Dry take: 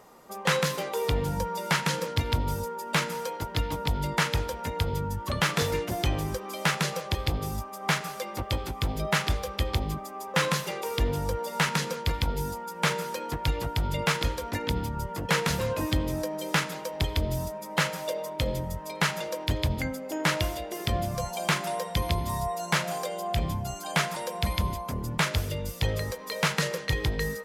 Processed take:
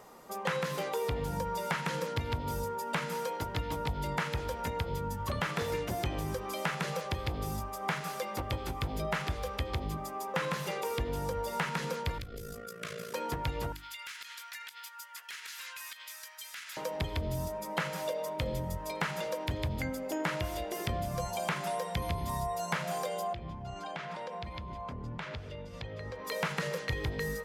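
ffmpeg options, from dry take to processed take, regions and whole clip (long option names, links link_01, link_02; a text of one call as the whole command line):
ffmpeg -i in.wav -filter_complex "[0:a]asettb=1/sr,asplit=3[link_01][link_02][link_03];[link_01]atrim=end=12.184[link_04];[link_02]atrim=start=12.18:end=13.14,asetpts=PTS-STARTPTS,afade=type=in:duration=0.004:curve=qsin,afade=type=out:start_time=0.956:duration=0.004:curve=qsin,asuperstop=centerf=870:order=20:qfactor=3,acompressor=threshold=-34dB:ratio=4:attack=3.2:release=140:knee=1:detection=peak,tremolo=f=55:d=0.788[link_05];[link_03]atrim=start=13.136[link_06];[link_04][link_05]acrossfade=duration=0.004:curve1=hsin:curve2=qsin[link_07];[link_07][link_06]acrossfade=duration=0.004:curve1=qsin:curve2=hsin,asettb=1/sr,asplit=3[link_08][link_09][link_10];[link_08]atrim=end=13.724[link_11];[link_09]atrim=start=13.72:end=16.77,asetpts=PTS-STARTPTS,afade=type=in:duration=0.004:curve=qsin,afade=type=out:start_time=3.046:duration=0.004:curve=qsin,highpass=frequency=1500:width=0.5412,highpass=frequency=1500:width=1.3066,acompressor=threshold=-38dB:ratio=16:attack=3.2:release=140:knee=1:detection=peak,asoftclip=type=hard:threshold=-36.5dB[link_12];[link_10]atrim=start=16.766[link_13];[link_11][link_12]acrossfade=duration=0.004:curve1=hsin:curve2=qsin[link_14];[link_14][link_13]acrossfade=duration=0.004:curve1=qsin:curve2=hsin,asettb=1/sr,asplit=3[link_15][link_16][link_17];[link_15]atrim=end=23.334[link_18];[link_16]atrim=start=23.33:end=26.25,asetpts=PTS-STARTPTS,afade=type=in:duration=0.004:curve=qsin,afade=type=out:start_time=2.916:duration=0.004:curve=qsin,lowpass=3100,acompressor=threshold=-36dB:ratio=8:attack=3.2:release=140:knee=1:detection=peak[link_19];[link_17]atrim=start=26.246[link_20];[link_18][link_19]acrossfade=duration=0.004:curve1=hsin:curve2=qsin[link_21];[link_21][link_20]acrossfade=duration=0.004:curve1=qsin:curve2=hsin,acrossover=split=2700[link_22][link_23];[link_23]acompressor=threshold=-38dB:ratio=4:attack=1:release=60[link_24];[link_22][link_24]amix=inputs=2:normalize=0,bandreject=frequency=50:width_type=h:width=6,bandreject=frequency=100:width_type=h:width=6,bandreject=frequency=150:width_type=h:width=6,bandreject=frequency=200:width_type=h:width=6,bandreject=frequency=250:width_type=h:width=6,bandreject=frequency=300:width_type=h:width=6,bandreject=frequency=350:width_type=h:width=6,acompressor=threshold=-31dB:ratio=3" out.wav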